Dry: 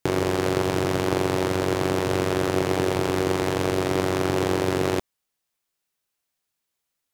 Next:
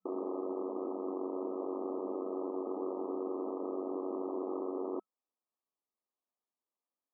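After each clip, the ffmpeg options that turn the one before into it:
ffmpeg -i in.wav -af "aeval=exprs='(tanh(20*val(0)+0.55)-tanh(0.55))/20':channel_layout=same,afftfilt=real='re*between(b*sr/4096,200,1300)':imag='im*between(b*sr/4096,200,1300)':win_size=4096:overlap=0.75,volume=-5dB" out.wav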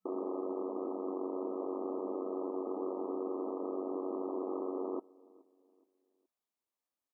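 ffmpeg -i in.wav -filter_complex "[0:a]asplit=2[link_01][link_02];[link_02]adelay=422,lowpass=frequency=1100:poles=1,volume=-23dB,asplit=2[link_03][link_04];[link_04]adelay=422,lowpass=frequency=1100:poles=1,volume=0.39,asplit=2[link_05][link_06];[link_06]adelay=422,lowpass=frequency=1100:poles=1,volume=0.39[link_07];[link_01][link_03][link_05][link_07]amix=inputs=4:normalize=0" out.wav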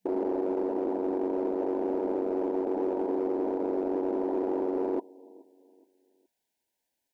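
ffmpeg -i in.wav -filter_complex "[0:a]asuperstop=centerf=1200:order=20:qfactor=2.7,asplit=2[link_01][link_02];[link_02]asoftclip=type=hard:threshold=-38dB,volume=-6dB[link_03];[link_01][link_03]amix=inputs=2:normalize=0,volume=6dB" out.wav

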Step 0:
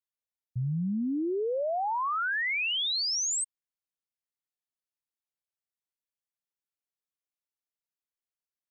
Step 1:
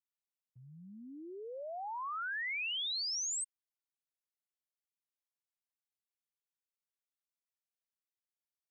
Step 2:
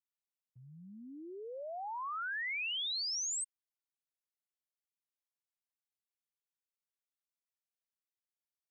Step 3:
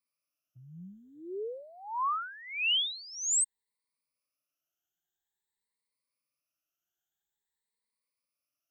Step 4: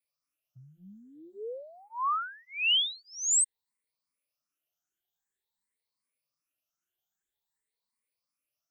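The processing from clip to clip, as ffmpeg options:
ffmpeg -i in.wav -af "highpass=frequency=1100:poles=1,volume=-7dB" out.wav
ffmpeg -i in.wav -af anull out.wav
ffmpeg -i in.wav -af "afftfilt=real='re*pow(10,22/40*sin(2*PI*(0.94*log(max(b,1)*sr/1024/100)/log(2)-(0.49)*(pts-256)/sr)))':imag='im*pow(10,22/40*sin(2*PI*(0.94*log(max(b,1)*sr/1024/100)/log(2)-(0.49)*(pts-256)/sr)))':win_size=1024:overlap=0.75" out.wav
ffmpeg -i in.wav -filter_complex "[0:a]asplit=2[link_01][link_02];[link_02]afreqshift=2.6[link_03];[link_01][link_03]amix=inputs=2:normalize=1,volume=3dB" out.wav

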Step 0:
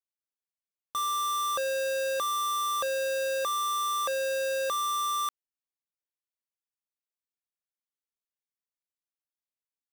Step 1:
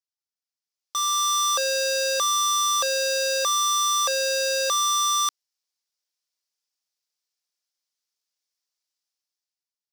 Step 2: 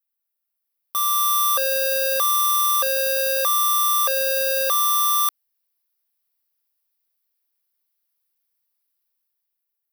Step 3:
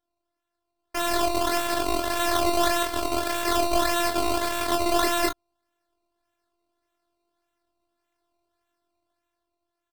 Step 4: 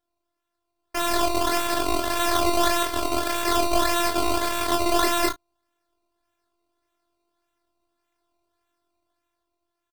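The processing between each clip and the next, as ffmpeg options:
ffmpeg -i in.wav -af "highpass=400,equalizer=frequency=5200:width=1.3:gain=14.5,dynaudnorm=framelen=150:gausssize=11:maxgain=12dB,volume=-8dB" out.wav
ffmpeg -i in.wav -af "bass=frequency=250:gain=-7,treble=frequency=4000:gain=-10,aexciter=amount=14.9:drive=4.1:freq=9900,volume=2.5dB" out.wav
ffmpeg -i in.wav -filter_complex "[0:a]acrusher=samples=18:mix=1:aa=0.000001:lfo=1:lforange=18:lforate=1.7,afftfilt=real='hypot(re,im)*cos(PI*b)':imag='0':win_size=512:overlap=0.75,asplit=2[link_01][link_02];[link_02]aecho=0:1:23|36:0.631|0.316[link_03];[link_01][link_03]amix=inputs=2:normalize=0,volume=-2dB" out.wav
ffmpeg -i in.wav -filter_complex "[0:a]asplit=2[link_01][link_02];[link_02]adelay=34,volume=-12.5dB[link_03];[link_01][link_03]amix=inputs=2:normalize=0,volume=1.5dB" out.wav

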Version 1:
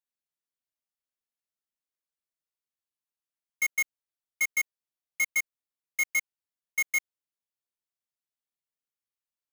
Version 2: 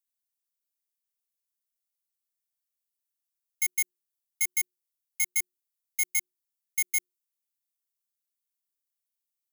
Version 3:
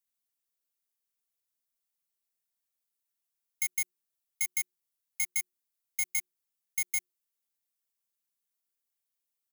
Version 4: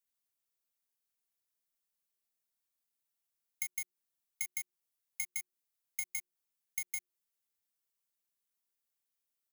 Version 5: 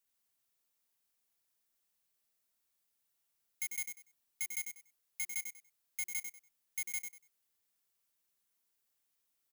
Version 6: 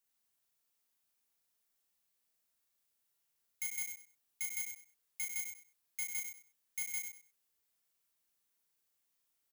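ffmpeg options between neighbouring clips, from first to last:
ffmpeg -i in.wav -af "aderivative,bandreject=frequency=60:width_type=h:width=6,bandreject=frequency=120:width_type=h:width=6,bandreject=frequency=180:width_type=h:width=6,bandreject=frequency=240:width_type=h:width=6,bandreject=frequency=300:width_type=h:width=6,bandreject=frequency=360:width_type=h:width=6,volume=4dB" out.wav
ffmpeg -i in.wav -af "aecho=1:1:4.4:0.41" out.wav
ffmpeg -i in.wav -af "acompressor=threshold=-31dB:ratio=6,volume=-1.5dB" out.wav
ffmpeg -i in.wav -af "asoftclip=type=tanh:threshold=-28.5dB,aecho=1:1:96|192|288:0.473|0.104|0.0229,volume=4.5dB" out.wav
ffmpeg -i in.wav -filter_complex "[0:a]asplit=2[link_01][link_02];[link_02]adelay=34,volume=-3.5dB[link_03];[link_01][link_03]amix=inputs=2:normalize=0,volume=-1.5dB" out.wav

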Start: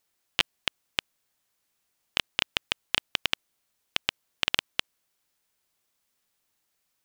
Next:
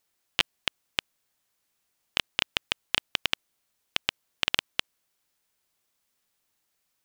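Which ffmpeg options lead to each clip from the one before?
ffmpeg -i in.wav -af anull out.wav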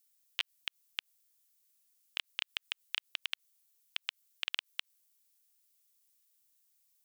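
ffmpeg -i in.wav -filter_complex "[0:a]aderivative,acrossover=split=3700[link_01][link_02];[link_02]acompressor=threshold=-46dB:ratio=4:attack=1:release=60[link_03];[link_01][link_03]amix=inputs=2:normalize=0,volume=1dB" out.wav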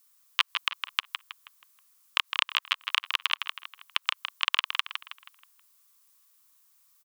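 ffmpeg -i in.wav -filter_complex "[0:a]highpass=frequency=1100:width_type=q:width=6.1,asplit=2[link_01][link_02];[link_02]adelay=160,lowpass=frequency=4800:poles=1,volume=-6dB,asplit=2[link_03][link_04];[link_04]adelay=160,lowpass=frequency=4800:poles=1,volume=0.43,asplit=2[link_05][link_06];[link_06]adelay=160,lowpass=frequency=4800:poles=1,volume=0.43,asplit=2[link_07][link_08];[link_08]adelay=160,lowpass=frequency=4800:poles=1,volume=0.43,asplit=2[link_09][link_10];[link_10]adelay=160,lowpass=frequency=4800:poles=1,volume=0.43[link_11];[link_03][link_05][link_07][link_09][link_11]amix=inputs=5:normalize=0[link_12];[link_01][link_12]amix=inputs=2:normalize=0,volume=8.5dB" out.wav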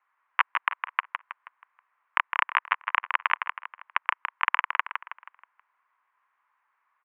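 ffmpeg -i in.wav -af "highpass=frequency=370:width_type=q:width=0.5412,highpass=frequency=370:width_type=q:width=1.307,lowpass=frequency=2100:width_type=q:width=0.5176,lowpass=frequency=2100:width_type=q:width=0.7071,lowpass=frequency=2100:width_type=q:width=1.932,afreqshift=-64,volume=8.5dB" out.wav

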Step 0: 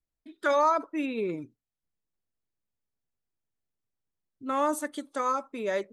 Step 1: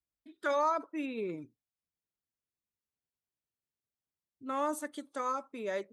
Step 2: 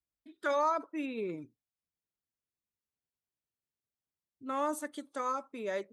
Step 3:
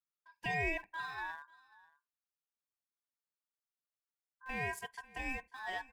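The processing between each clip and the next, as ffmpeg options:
ffmpeg -i in.wav -af "highpass=47,volume=-6dB" out.wav
ffmpeg -i in.wav -af anull out.wav
ffmpeg -i in.wav -filter_complex "[0:a]asplit=2[link_01][link_02];[link_02]aeval=exprs='val(0)*gte(abs(val(0)),0.0106)':channel_layout=same,volume=-10dB[link_03];[link_01][link_03]amix=inputs=2:normalize=0,aeval=exprs='val(0)*sin(2*PI*1300*n/s)':channel_layout=same,aecho=1:1:541:0.0841,volume=-5dB" out.wav

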